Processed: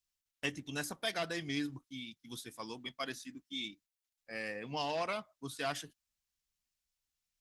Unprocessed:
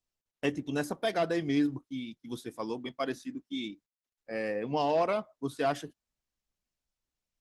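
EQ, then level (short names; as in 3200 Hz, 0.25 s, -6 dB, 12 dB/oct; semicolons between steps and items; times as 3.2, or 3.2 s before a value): passive tone stack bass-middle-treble 5-5-5; +9.0 dB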